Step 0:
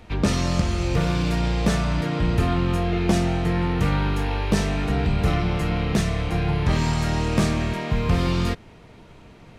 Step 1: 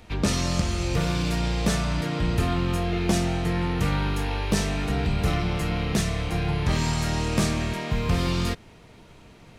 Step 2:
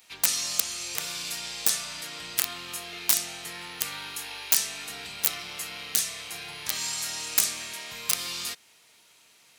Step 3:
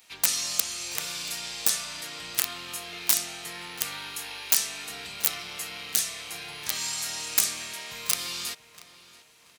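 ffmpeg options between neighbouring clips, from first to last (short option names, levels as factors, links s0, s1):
-af "highshelf=f=3900:g=7.5,volume=0.708"
-af "aeval=exprs='(mod(4.73*val(0)+1,2)-1)/4.73':c=same,aderivative,volume=2"
-filter_complex "[0:a]asplit=2[s0][s1];[s1]adelay=682,lowpass=f=3000:p=1,volume=0.158,asplit=2[s2][s3];[s3]adelay=682,lowpass=f=3000:p=1,volume=0.42,asplit=2[s4][s5];[s5]adelay=682,lowpass=f=3000:p=1,volume=0.42,asplit=2[s6][s7];[s7]adelay=682,lowpass=f=3000:p=1,volume=0.42[s8];[s0][s2][s4][s6][s8]amix=inputs=5:normalize=0"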